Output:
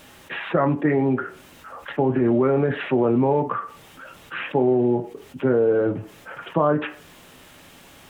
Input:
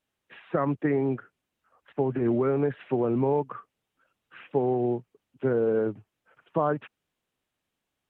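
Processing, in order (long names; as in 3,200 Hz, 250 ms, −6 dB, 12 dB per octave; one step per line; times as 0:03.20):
on a send at −5.5 dB: parametric band 77 Hz −14.5 dB 2.4 octaves + convolution reverb RT60 0.25 s, pre-delay 3 ms
on the sum: envelope flattener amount 50%
level +3.5 dB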